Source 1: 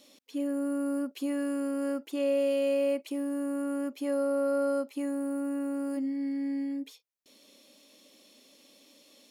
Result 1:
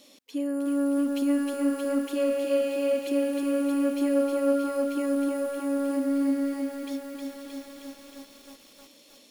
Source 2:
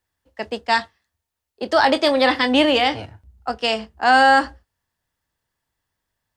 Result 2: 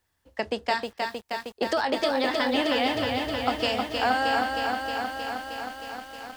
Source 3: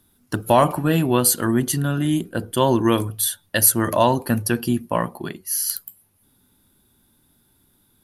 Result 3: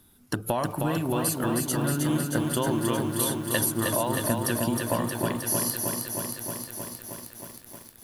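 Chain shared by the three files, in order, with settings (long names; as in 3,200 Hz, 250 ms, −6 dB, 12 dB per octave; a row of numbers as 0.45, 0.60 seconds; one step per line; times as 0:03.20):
downward compressor 6 to 1, threshold −28 dBFS
feedback echo at a low word length 313 ms, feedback 80%, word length 9 bits, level −4 dB
loudness normalisation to −27 LKFS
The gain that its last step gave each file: +3.5, +3.5, +2.5 decibels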